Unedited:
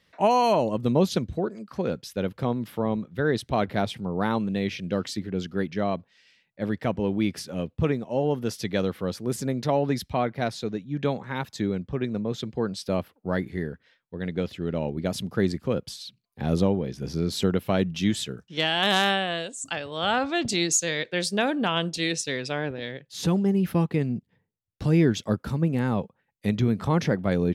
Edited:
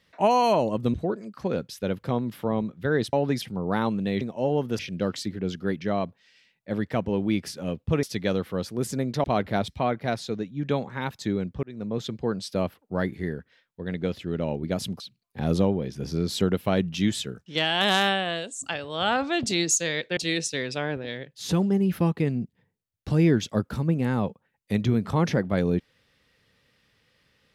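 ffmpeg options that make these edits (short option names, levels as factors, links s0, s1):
-filter_complex "[0:a]asplit=12[s0][s1][s2][s3][s4][s5][s6][s7][s8][s9][s10][s11];[s0]atrim=end=0.942[s12];[s1]atrim=start=1.278:end=3.472[s13];[s2]atrim=start=9.728:end=10.022[s14];[s3]atrim=start=3.908:end=4.702[s15];[s4]atrim=start=7.938:end=8.522[s16];[s5]atrim=start=4.698:end=7.942[s17];[s6]atrim=start=8.518:end=9.732[s18];[s7]atrim=start=3.468:end=3.912[s19];[s8]atrim=start=10.018:end=11.97,asetpts=PTS-STARTPTS,afade=t=out:st=1.948:d=0.004:c=hsin[s20];[s9]atrim=start=11.97:end=15.342,asetpts=PTS-STARTPTS,afade=t=in:d=0.32[s21];[s10]atrim=start=16.018:end=21.192[s22];[s11]atrim=start=21.908[s23];[s12][s13]acrossfade=d=0.004:c1=hsin:c2=hsin[s24];[s24][s14]acrossfade=d=0.004:c1=hsin:c2=hsin[s25];[s25][s15]acrossfade=d=0.004:c1=hsin:c2=hsin[s26];[s26][s16]acrossfade=d=0.004:c1=hsin:c2=hsin[s27];[s27][s17]acrossfade=d=0.004:c1=hsin:c2=hsin[s28];[s28][s18]acrossfade=d=0.004:c1=hsin:c2=hsin[s29];[s29][s19]acrossfade=d=0.004:c1=hsin:c2=hsin[s30];[s20][s21]concat=n=2:v=0:a=1[s31];[s30][s31]acrossfade=d=0.004:c1=hsin:c2=hsin[s32];[s32][s22]acrossfade=d=0.004:c1=hsin:c2=hsin[s33];[s33][s23]acrossfade=d=0.004:c1=hsin:c2=hsin"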